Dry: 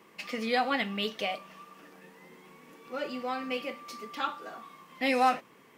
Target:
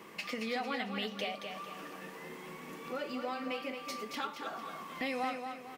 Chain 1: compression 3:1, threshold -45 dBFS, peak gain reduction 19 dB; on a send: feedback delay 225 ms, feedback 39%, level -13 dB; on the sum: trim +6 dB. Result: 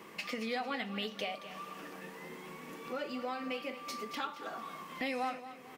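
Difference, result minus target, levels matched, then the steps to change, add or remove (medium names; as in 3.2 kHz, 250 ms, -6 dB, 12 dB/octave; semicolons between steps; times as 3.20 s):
echo-to-direct -6.5 dB
change: feedback delay 225 ms, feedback 39%, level -6.5 dB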